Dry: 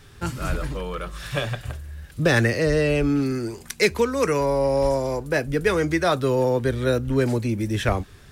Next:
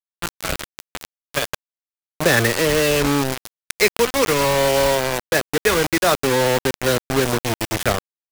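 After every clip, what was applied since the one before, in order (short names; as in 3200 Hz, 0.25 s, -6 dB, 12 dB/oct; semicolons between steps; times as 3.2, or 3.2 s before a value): Chebyshev low-pass 11000 Hz, order 3; low shelf 260 Hz -7 dB; bit-crush 4-bit; gain +4 dB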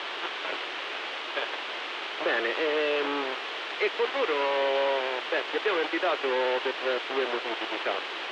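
infinite clipping; elliptic band-pass 350–3200 Hz, stop band 80 dB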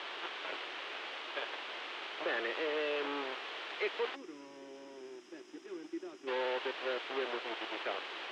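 spectral gain 4.15–6.28, 400–4900 Hz -20 dB; gain -8.5 dB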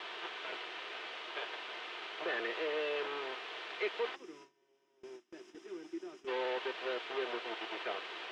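gate with hold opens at -40 dBFS; notch comb 280 Hz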